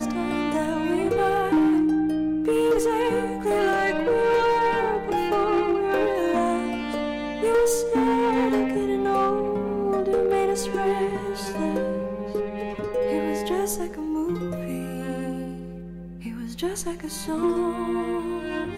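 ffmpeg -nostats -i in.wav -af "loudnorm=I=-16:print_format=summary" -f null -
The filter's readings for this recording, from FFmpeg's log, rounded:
Input Integrated:    -24.6 LUFS
Input True Peak:     -14.7 dBTP
Input LRA:             6.3 LU
Input Threshold:     -34.8 LUFS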